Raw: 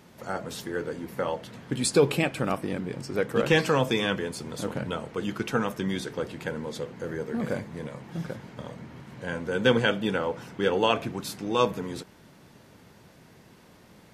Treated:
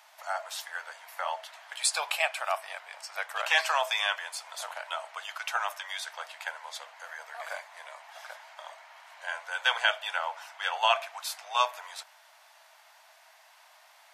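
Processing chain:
Chebyshev high-pass filter 640 Hz, order 6
level +2 dB

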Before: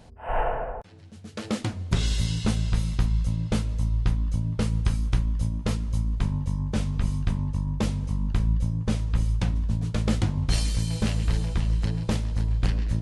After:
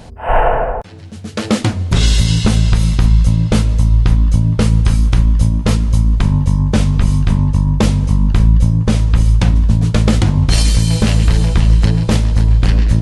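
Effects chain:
boost into a limiter +15.5 dB
level −1 dB

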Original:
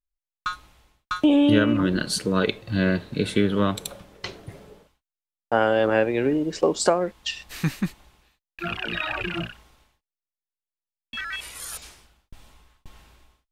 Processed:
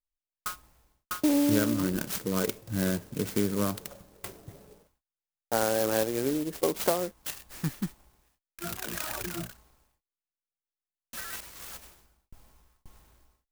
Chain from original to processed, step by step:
converter with an unsteady clock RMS 0.1 ms
level −6.5 dB

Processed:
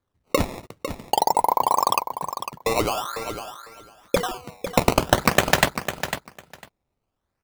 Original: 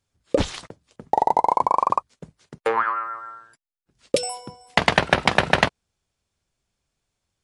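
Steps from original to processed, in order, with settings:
dynamic equaliser 5,000 Hz, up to +5 dB, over −37 dBFS, Q 1
sample-and-hold swept by an LFO 16×, swing 160% 0.48 Hz
on a send: repeating echo 501 ms, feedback 15%, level −9.5 dB
on the sum: level −1 dB

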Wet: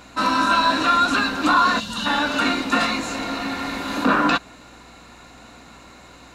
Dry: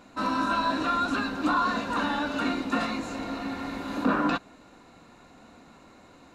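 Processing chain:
gain on a spectral selection 0:01.79–0:02.06, 250–2,700 Hz −14 dB
tilt shelving filter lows −4.5 dB, about 1,100 Hz
mains hum 60 Hz, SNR 32 dB
level +8.5 dB

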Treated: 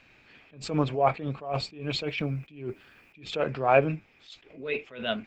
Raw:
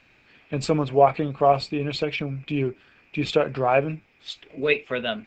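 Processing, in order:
0:01.83–0:03.30: bit-depth reduction 12 bits, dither none
0:04.31–0:04.85: high-shelf EQ 3,200 Hz −4.5 dB
level that may rise only so fast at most 120 dB per second

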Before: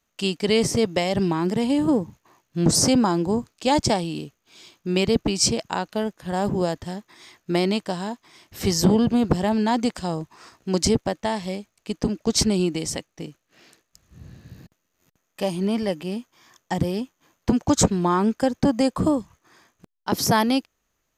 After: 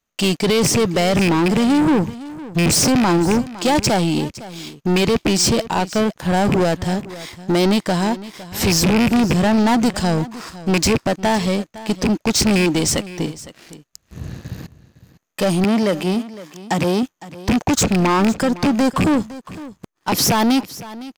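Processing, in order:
loose part that buzzes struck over −21 dBFS, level −14 dBFS
brickwall limiter −13.5 dBFS, peak gain reduction 8 dB
leveller curve on the samples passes 3
0:15.64–0:17.03: high-pass filter 150 Hz
single-tap delay 509 ms −17 dB
level +2 dB

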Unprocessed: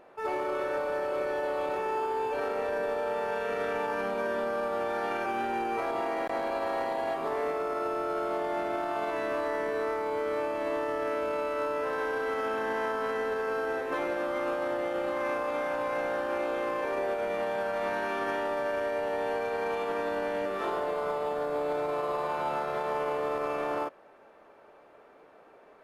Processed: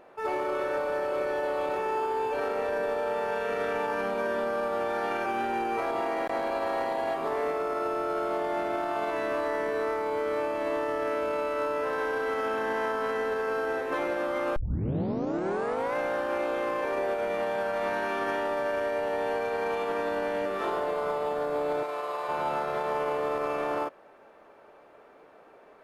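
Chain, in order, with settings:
0:14.56: tape start 1.40 s
0:21.83–0:22.29: high-pass filter 760 Hz 6 dB per octave
level +1.5 dB

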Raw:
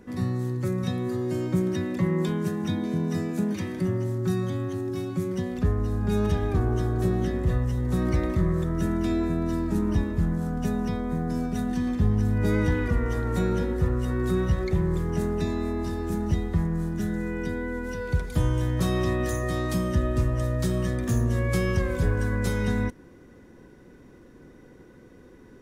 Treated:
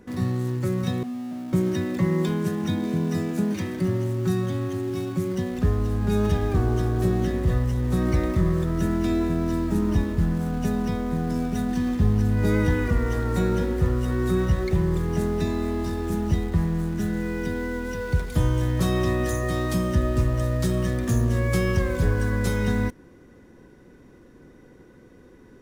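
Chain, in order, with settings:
0:01.03–0:01.53: pair of resonant band-passes 410 Hz, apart 1.5 octaves
in parallel at −11.5 dB: bit reduction 6 bits

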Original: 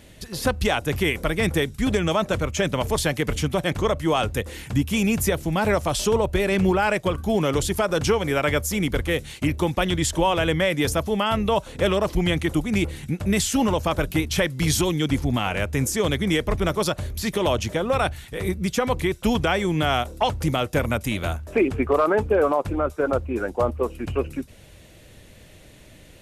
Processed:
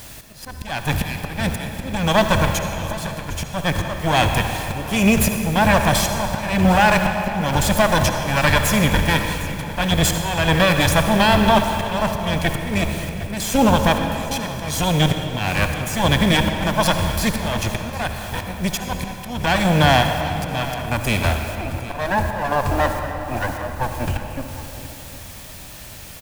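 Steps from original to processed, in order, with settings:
lower of the sound and its delayed copy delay 1.2 ms
bit-depth reduction 8 bits, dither triangular
volume swells 365 ms
single-tap delay 757 ms −16 dB
on a send at −5 dB: convolution reverb RT60 2.9 s, pre-delay 58 ms
on the sum: level +7 dB

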